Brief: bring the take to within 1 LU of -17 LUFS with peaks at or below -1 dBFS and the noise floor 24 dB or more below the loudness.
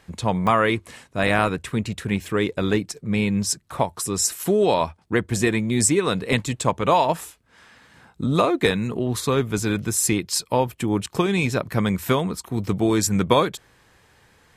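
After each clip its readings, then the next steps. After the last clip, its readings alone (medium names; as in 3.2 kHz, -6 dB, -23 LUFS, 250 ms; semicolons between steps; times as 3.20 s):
dropouts 1; longest dropout 2.4 ms; loudness -22.5 LUFS; peak level -2.5 dBFS; loudness target -17.0 LUFS
-> interpolate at 0.47 s, 2.4 ms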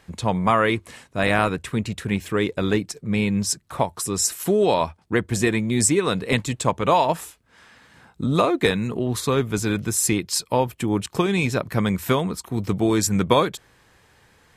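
dropouts 0; loudness -22.5 LUFS; peak level -2.5 dBFS; loudness target -17.0 LUFS
-> trim +5.5 dB; peak limiter -1 dBFS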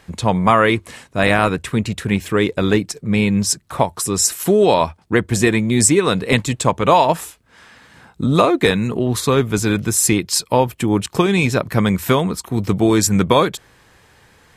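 loudness -17.0 LUFS; peak level -1.0 dBFS; noise floor -52 dBFS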